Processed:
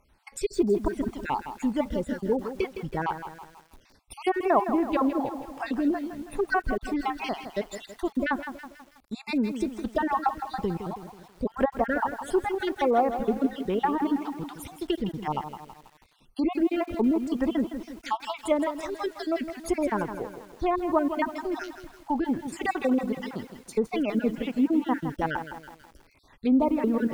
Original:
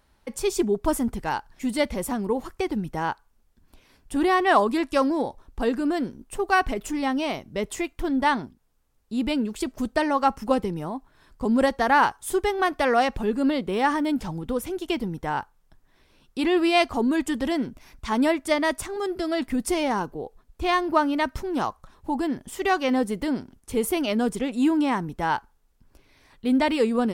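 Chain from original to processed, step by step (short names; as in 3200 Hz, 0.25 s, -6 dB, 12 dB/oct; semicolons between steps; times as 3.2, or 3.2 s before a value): random spectral dropouts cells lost 49%; treble ducked by the level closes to 870 Hz, closed at -19.5 dBFS; lo-fi delay 0.162 s, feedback 55%, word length 8-bit, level -9.5 dB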